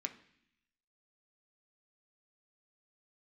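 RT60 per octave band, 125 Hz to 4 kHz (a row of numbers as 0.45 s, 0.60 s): 0.95 s, 0.95 s, 0.65 s, 0.65 s, 0.95 s, 1.0 s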